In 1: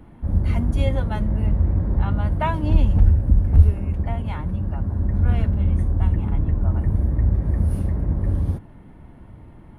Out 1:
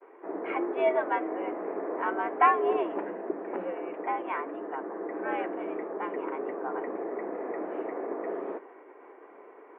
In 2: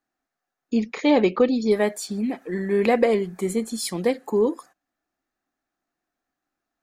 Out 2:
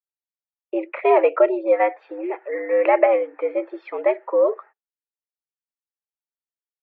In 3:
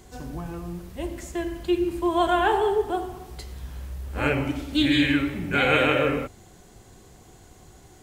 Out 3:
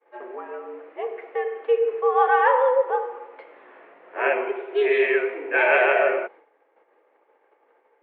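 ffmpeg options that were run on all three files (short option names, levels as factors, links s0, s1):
-af "agate=range=0.0224:threshold=0.00891:ratio=3:detection=peak,highpass=f=280:t=q:w=0.5412,highpass=f=280:t=q:w=1.307,lowpass=f=2300:t=q:w=0.5176,lowpass=f=2300:t=q:w=0.7071,lowpass=f=2300:t=q:w=1.932,afreqshift=110,volume=1.5"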